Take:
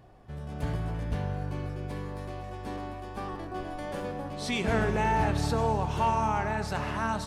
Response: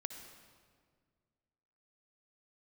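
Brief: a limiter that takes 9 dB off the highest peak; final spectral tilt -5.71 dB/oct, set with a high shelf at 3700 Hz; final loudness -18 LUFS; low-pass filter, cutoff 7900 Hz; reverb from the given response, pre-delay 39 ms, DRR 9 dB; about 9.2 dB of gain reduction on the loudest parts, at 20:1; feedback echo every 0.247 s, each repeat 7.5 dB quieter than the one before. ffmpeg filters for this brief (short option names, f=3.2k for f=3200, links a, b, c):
-filter_complex "[0:a]lowpass=7.9k,highshelf=f=3.7k:g=-3.5,acompressor=threshold=-31dB:ratio=20,alimiter=level_in=8dB:limit=-24dB:level=0:latency=1,volume=-8dB,aecho=1:1:247|494|741|988|1235:0.422|0.177|0.0744|0.0312|0.0131,asplit=2[a][b];[1:a]atrim=start_sample=2205,adelay=39[c];[b][c]afir=irnorm=-1:irlink=0,volume=-7dB[d];[a][d]amix=inputs=2:normalize=0,volume=21.5dB"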